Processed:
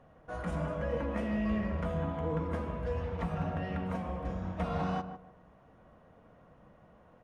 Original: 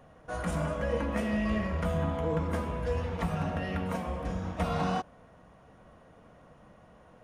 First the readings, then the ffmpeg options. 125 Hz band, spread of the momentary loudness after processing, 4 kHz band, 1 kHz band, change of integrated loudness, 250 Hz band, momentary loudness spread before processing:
−3.0 dB, 5 LU, −7.5 dB, −3.5 dB, −3.0 dB, −2.0 dB, 5 LU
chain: -filter_complex "[0:a]lowpass=frequency=2500:poles=1,asplit=2[link_01][link_02];[link_02]adelay=151,lowpass=frequency=1300:poles=1,volume=-9dB,asplit=2[link_03][link_04];[link_04]adelay=151,lowpass=frequency=1300:poles=1,volume=0.25,asplit=2[link_05][link_06];[link_06]adelay=151,lowpass=frequency=1300:poles=1,volume=0.25[link_07];[link_03][link_05][link_07]amix=inputs=3:normalize=0[link_08];[link_01][link_08]amix=inputs=2:normalize=0,volume=-3.5dB"

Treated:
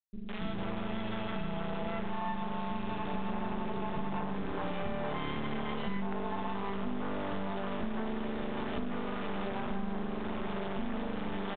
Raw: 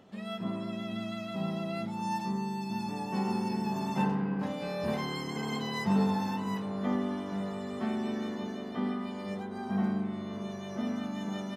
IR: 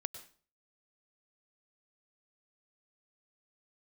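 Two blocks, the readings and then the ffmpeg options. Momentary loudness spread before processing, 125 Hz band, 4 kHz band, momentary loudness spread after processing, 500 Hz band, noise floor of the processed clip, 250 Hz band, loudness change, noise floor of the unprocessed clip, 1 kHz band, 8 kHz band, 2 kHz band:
7 LU, −4.5 dB, −3.0 dB, 1 LU, −0.5 dB, −36 dBFS, −5.0 dB, −3.0 dB, −40 dBFS, −1.0 dB, below −30 dB, +0.5 dB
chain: -filter_complex "[0:a]highpass=42,aresample=11025,acrusher=bits=4:dc=4:mix=0:aa=0.000001,aresample=44100,asoftclip=type=tanh:threshold=-21.5dB,equalizer=frequency=530:width=7.8:gain=-3,bandreject=frequency=50:width_type=h:width=6,bandreject=frequency=100:width_type=h:width=6,bandreject=frequency=150:width_type=h:width=6,bandreject=frequency=200:width_type=h:width=6,acrossover=split=1700[link_01][link_02];[link_01]dynaudnorm=framelen=300:gausssize=3:maxgain=7dB[link_03];[link_03][link_02]amix=inputs=2:normalize=0,acrossover=split=310[link_04][link_05];[link_05]adelay=160[link_06];[link_04][link_06]amix=inputs=2:normalize=0,acompressor=threshold=-35dB:ratio=6,volume=4.5dB" -ar 8000 -c:a pcm_mulaw

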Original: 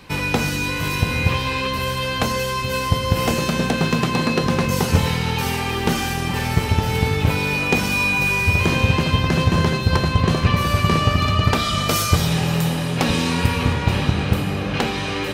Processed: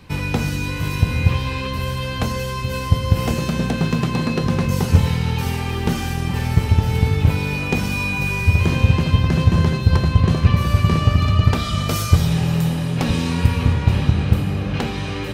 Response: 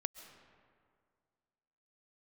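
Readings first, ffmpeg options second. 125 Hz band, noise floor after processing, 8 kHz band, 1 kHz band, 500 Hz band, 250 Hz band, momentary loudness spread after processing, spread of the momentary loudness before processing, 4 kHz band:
+3.5 dB, −25 dBFS, −5.0 dB, −4.5 dB, −3.5 dB, +0.5 dB, 7 LU, 5 LU, −5.0 dB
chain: -af "equalizer=frequency=69:width=0.36:gain=10,volume=-5dB"

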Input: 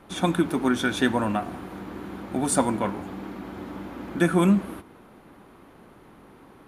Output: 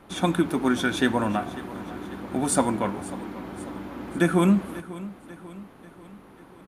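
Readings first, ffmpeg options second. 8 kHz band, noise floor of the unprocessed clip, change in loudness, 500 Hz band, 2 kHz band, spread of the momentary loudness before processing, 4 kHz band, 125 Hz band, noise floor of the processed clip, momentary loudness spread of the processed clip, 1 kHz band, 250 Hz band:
0.0 dB, −52 dBFS, −1.0 dB, 0.0 dB, 0.0 dB, 16 LU, 0.0 dB, 0.0 dB, −50 dBFS, 17 LU, 0.0 dB, 0.0 dB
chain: -af "aecho=1:1:542|1084|1626|2168|2710:0.141|0.0749|0.0397|0.021|0.0111"

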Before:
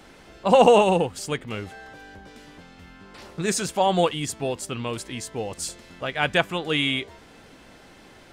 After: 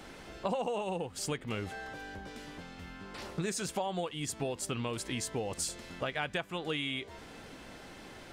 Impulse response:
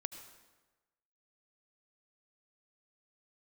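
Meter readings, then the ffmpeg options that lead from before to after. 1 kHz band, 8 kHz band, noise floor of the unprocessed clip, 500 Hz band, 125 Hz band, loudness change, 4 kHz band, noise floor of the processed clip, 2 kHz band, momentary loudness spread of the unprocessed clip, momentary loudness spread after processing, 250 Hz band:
−15.0 dB, −6.0 dB, −50 dBFS, −14.5 dB, −8.5 dB, −13.5 dB, −10.5 dB, −50 dBFS, −11.0 dB, 17 LU, 14 LU, −10.5 dB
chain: -af "acompressor=threshold=-31dB:ratio=12"

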